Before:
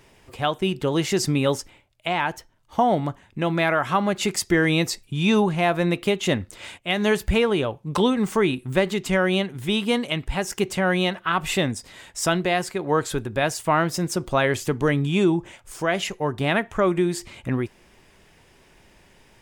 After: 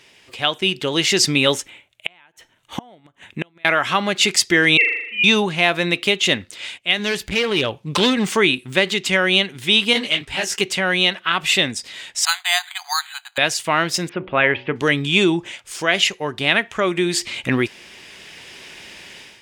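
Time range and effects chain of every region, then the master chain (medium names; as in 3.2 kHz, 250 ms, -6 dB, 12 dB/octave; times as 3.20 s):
1.54–3.65 s: peaking EQ 4.9 kHz -14 dB 0.43 oct + inverted gate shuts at -17 dBFS, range -35 dB
4.77–5.24 s: formants replaced by sine waves + high-pass 860 Hz + flutter echo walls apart 6.9 m, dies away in 0.77 s
6.99–8.27 s: bass shelf 110 Hz +9 dB + hard clipper -16.5 dBFS
9.93–10.61 s: waveshaping leveller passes 1 + comb of notches 170 Hz + detune thickener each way 59 cents
12.25–13.38 s: brick-wall FIR high-pass 700 Hz + careless resampling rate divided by 8×, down filtered, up hold
14.09–14.76 s: steep low-pass 2.7 kHz + de-hum 62.8 Hz, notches 15
whole clip: frequency weighting D; level rider; trim -1 dB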